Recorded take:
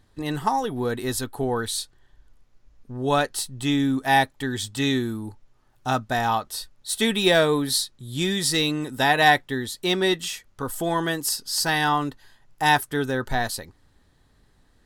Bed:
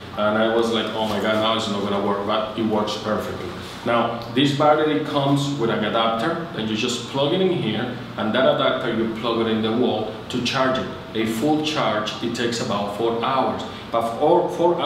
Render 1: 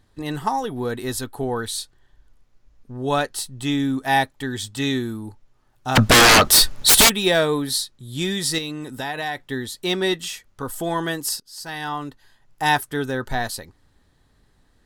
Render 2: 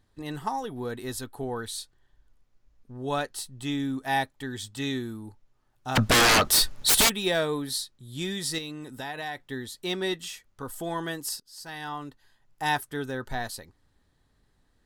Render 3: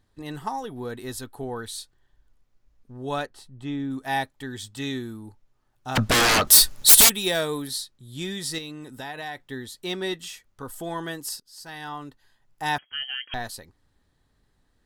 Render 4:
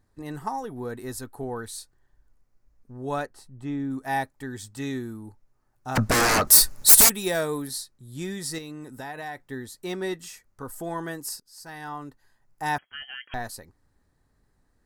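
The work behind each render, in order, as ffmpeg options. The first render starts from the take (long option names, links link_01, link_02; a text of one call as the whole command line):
ffmpeg -i in.wav -filter_complex "[0:a]asplit=3[link_01][link_02][link_03];[link_01]afade=type=out:start_time=5.95:duration=0.02[link_04];[link_02]aeval=exprs='0.398*sin(PI/2*10*val(0)/0.398)':channel_layout=same,afade=type=in:start_time=5.95:duration=0.02,afade=type=out:start_time=7.08:duration=0.02[link_05];[link_03]afade=type=in:start_time=7.08:duration=0.02[link_06];[link_04][link_05][link_06]amix=inputs=3:normalize=0,asettb=1/sr,asplit=3[link_07][link_08][link_09];[link_07]atrim=end=8.584[link_10];[link_08]atrim=start=8.58:end=9.5,asetpts=PTS-STARTPTS,afade=type=in:duration=0.004:curve=qsin,afade=type=out:start_time=0.916:duration=0.004:curve=qsin,acompressor=threshold=-27dB:ratio=3:attack=3.2:release=140:knee=1:detection=peak[link_11];[link_09]atrim=start=9.496[link_12];[link_10][link_11]acrossfade=duration=0.004:curve1=hsin:curve2=qsin[link_13];[link_13][link_12]acrossfade=duration=0.004:curve1=qsin:curve2=hsin,asplit=2[link_14][link_15];[link_14]atrim=end=11.4,asetpts=PTS-STARTPTS,afade=type=out:start_time=11.396:duration=0.004:curve=hsin:silence=0.112202[link_16];[link_15]atrim=start=11.4,asetpts=PTS-STARTPTS,afade=type=in:duration=1.22:silence=0.112202[link_17];[link_16][link_17]concat=n=2:v=0:a=1" out.wav
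ffmpeg -i in.wav -af "volume=-7.5dB" out.wav
ffmpeg -i in.wav -filter_complex "[0:a]asplit=3[link_01][link_02][link_03];[link_01]afade=type=out:start_time=3.25:duration=0.02[link_04];[link_02]lowpass=frequency=1400:poles=1,afade=type=in:start_time=3.25:duration=0.02,afade=type=out:start_time=3.9:duration=0.02[link_05];[link_03]afade=type=in:start_time=3.9:duration=0.02[link_06];[link_04][link_05][link_06]amix=inputs=3:normalize=0,asettb=1/sr,asplit=3[link_07][link_08][link_09];[link_07]atrim=end=6.474[link_10];[link_08]atrim=start=6.47:end=7.68,asetpts=PTS-STARTPTS,afade=type=in:duration=0.004:curve=qsin,afade=type=out:start_time=1.206:duration=0.004:curve=qsin,highshelf=frequency=5700:gain=12[link_11];[link_09]atrim=start=7.676[link_12];[link_10][link_11]acrossfade=duration=0.004:curve1=hsin:curve2=qsin[link_13];[link_13][link_12]acrossfade=duration=0.004:curve1=qsin:curve2=hsin,asettb=1/sr,asplit=3[link_14][link_15][link_16];[link_14]atrim=end=12.784[link_17];[link_15]atrim=start=12.78:end=13.34,asetpts=PTS-STARTPTS,afade=type=in:duration=0.004:curve=qsin,afade=type=out:start_time=0.556:duration=0.004:curve=qsin,lowpass=frequency=2800:width_type=q:width=0.5098,lowpass=frequency=2800:width_type=q:width=0.6013,lowpass=frequency=2800:width_type=q:width=0.9,lowpass=frequency=2800:width_type=q:width=2.563,afreqshift=-3300[link_18];[link_16]atrim=start=13.336[link_19];[link_17][link_18]acrossfade=duration=0.004:curve1=hsin:curve2=qsin[link_20];[link_20][link_19]acrossfade=duration=0.004:curve1=qsin:curve2=hsin" out.wav
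ffmpeg -i in.wav -af "equalizer=frequency=3300:width=1.9:gain=-11" out.wav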